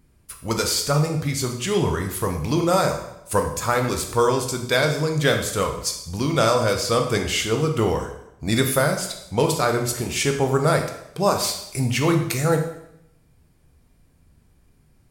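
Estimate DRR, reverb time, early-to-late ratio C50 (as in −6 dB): 3.0 dB, 0.80 s, 7.5 dB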